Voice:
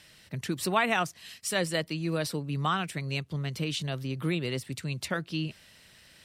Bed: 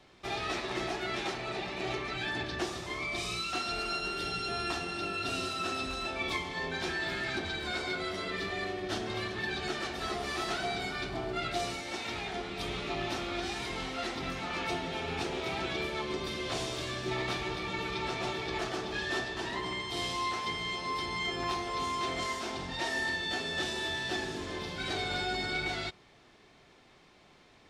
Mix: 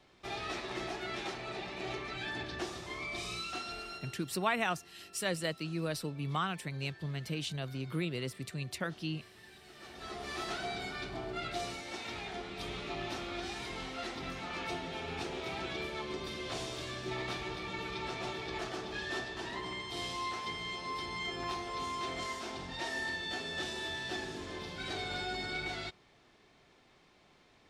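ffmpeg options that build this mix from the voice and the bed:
-filter_complex "[0:a]adelay=3700,volume=0.531[s0];[1:a]volume=4.47,afade=t=out:st=3.42:d=0.85:silence=0.133352,afade=t=in:st=9.72:d=0.67:silence=0.133352[s1];[s0][s1]amix=inputs=2:normalize=0"

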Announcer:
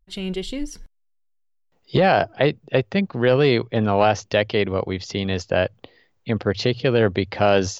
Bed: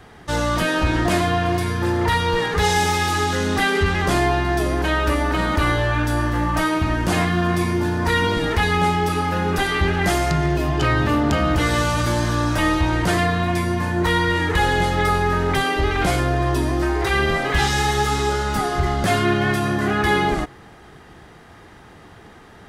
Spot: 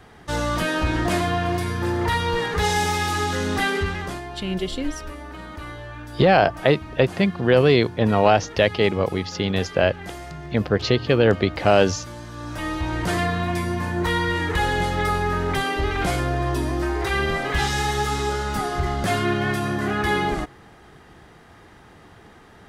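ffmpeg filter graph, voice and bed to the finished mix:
-filter_complex "[0:a]adelay=4250,volume=1.12[s0];[1:a]volume=3.16,afade=t=out:st=3.67:d=0.55:silence=0.211349,afade=t=in:st=12.32:d=0.88:silence=0.223872[s1];[s0][s1]amix=inputs=2:normalize=0"

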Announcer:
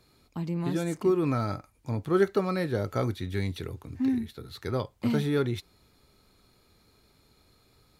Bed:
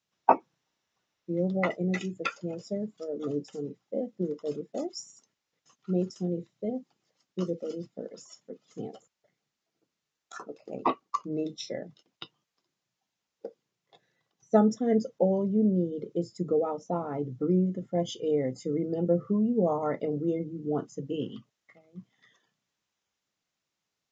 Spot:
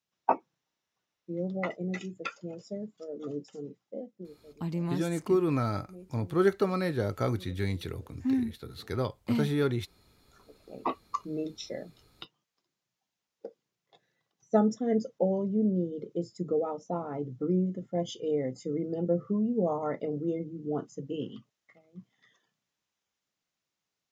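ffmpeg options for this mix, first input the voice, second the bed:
-filter_complex "[0:a]adelay=4250,volume=0.891[s0];[1:a]volume=4.47,afade=t=out:st=3.79:d=0.59:silence=0.16788,afade=t=in:st=10.4:d=0.65:silence=0.125893[s1];[s0][s1]amix=inputs=2:normalize=0"

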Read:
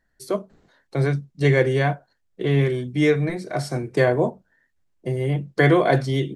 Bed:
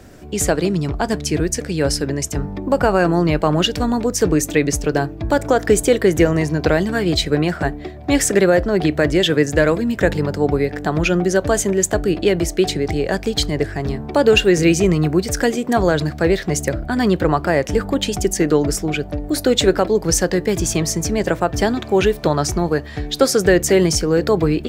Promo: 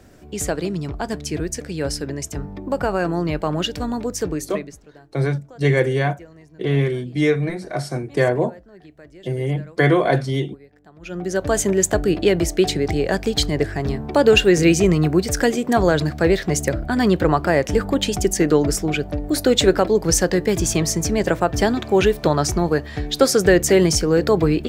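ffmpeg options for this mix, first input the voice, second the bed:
-filter_complex "[0:a]adelay=4200,volume=1.06[s0];[1:a]volume=12.6,afade=t=out:st=4.12:d=0.68:silence=0.0749894,afade=t=in:st=11:d=0.66:silence=0.0398107[s1];[s0][s1]amix=inputs=2:normalize=0"

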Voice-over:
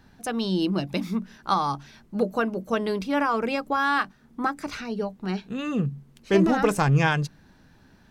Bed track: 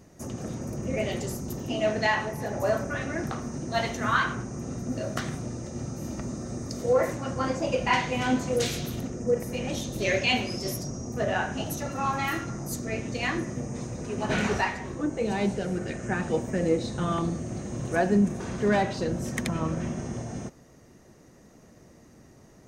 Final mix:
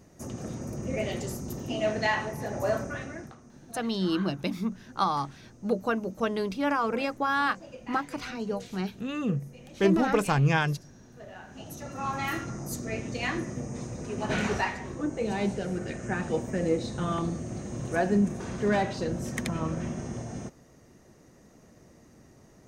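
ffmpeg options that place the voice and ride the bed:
-filter_complex "[0:a]adelay=3500,volume=0.708[s0];[1:a]volume=5.31,afade=t=out:st=2.78:d=0.58:silence=0.149624,afade=t=in:st=11.43:d=0.89:silence=0.149624[s1];[s0][s1]amix=inputs=2:normalize=0"

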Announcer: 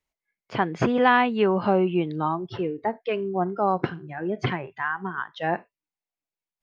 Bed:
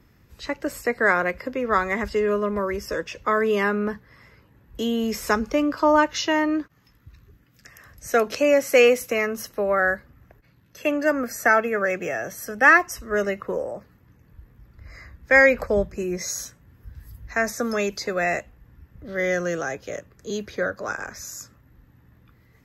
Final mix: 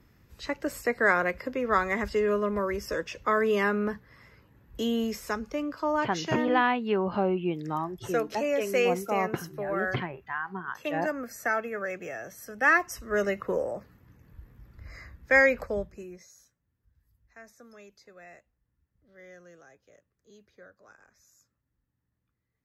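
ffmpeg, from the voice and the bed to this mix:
-filter_complex "[0:a]adelay=5500,volume=0.531[s0];[1:a]volume=1.78,afade=t=out:st=5:d=0.21:silence=0.473151,afade=t=in:st=12.48:d=1.05:silence=0.375837,afade=t=out:st=14.85:d=1.43:silence=0.0562341[s1];[s0][s1]amix=inputs=2:normalize=0"

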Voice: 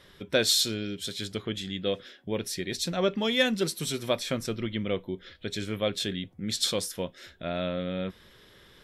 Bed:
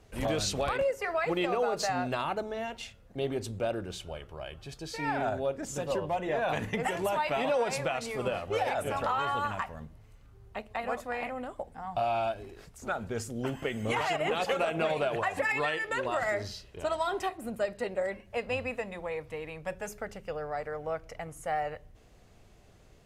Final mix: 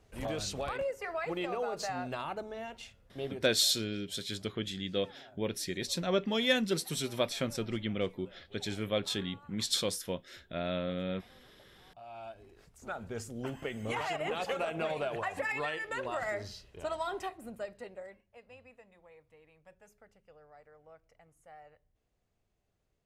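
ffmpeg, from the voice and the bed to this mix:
-filter_complex "[0:a]adelay=3100,volume=0.668[s0];[1:a]volume=5.96,afade=t=out:st=3.26:d=0.3:silence=0.0944061,afade=t=in:st=11.93:d=1.22:silence=0.0841395,afade=t=out:st=17.09:d=1.2:silence=0.141254[s1];[s0][s1]amix=inputs=2:normalize=0"

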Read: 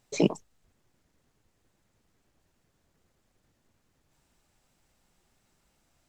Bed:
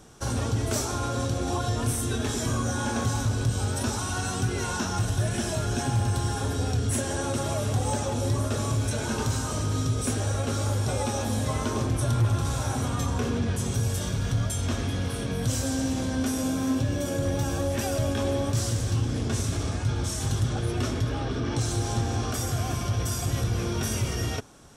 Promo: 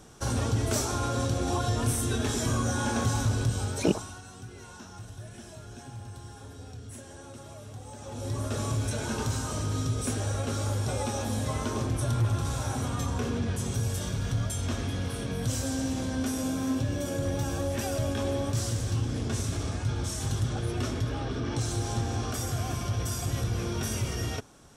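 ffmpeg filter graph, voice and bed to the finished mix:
-filter_complex "[0:a]adelay=3650,volume=0.841[s0];[1:a]volume=4.73,afade=t=out:st=3.34:d=0.87:silence=0.149624,afade=t=in:st=7.96:d=0.63:silence=0.199526[s1];[s0][s1]amix=inputs=2:normalize=0"

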